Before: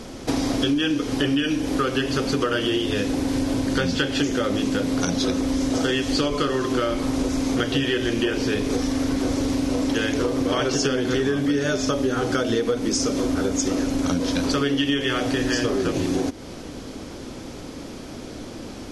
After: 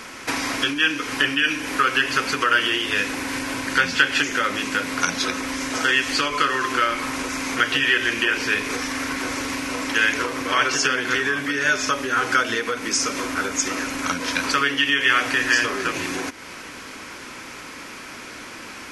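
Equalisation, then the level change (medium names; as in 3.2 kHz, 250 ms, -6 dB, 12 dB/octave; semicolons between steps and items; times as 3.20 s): tilt EQ +2.5 dB/octave; high-order bell 1.6 kHz +12 dB; band-stop 1.2 kHz, Q 17; -3.0 dB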